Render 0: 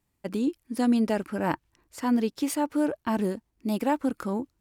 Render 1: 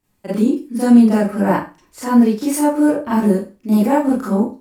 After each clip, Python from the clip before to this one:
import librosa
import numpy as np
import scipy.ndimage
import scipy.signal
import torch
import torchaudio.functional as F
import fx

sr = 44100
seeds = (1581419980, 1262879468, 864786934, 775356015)

y = fx.dynamic_eq(x, sr, hz=3400.0, q=1.0, threshold_db=-52.0, ratio=4.0, max_db=-8)
y = fx.rev_schroeder(y, sr, rt60_s=0.31, comb_ms=30, drr_db=-9.5)
y = y * 10.0 ** (1.0 / 20.0)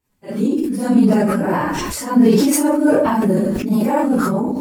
y = fx.phase_scramble(x, sr, seeds[0], window_ms=50)
y = fx.sustainer(y, sr, db_per_s=20.0)
y = y * 10.0 ** (-3.5 / 20.0)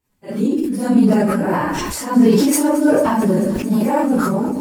y = fx.echo_thinned(x, sr, ms=221, feedback_pct=82, hz=710.0, wet_db=-17.0)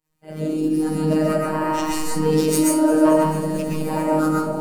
y = fx.robotise(x, sr, hz=156.0)
y = fx.rev_freeverb(y, sr, rt60_s=0.56, hf_ratio=0.55, predelay_ms=90, drr_db=-2.5)
y = y * 10.0 ** (-4.0 / 20.0)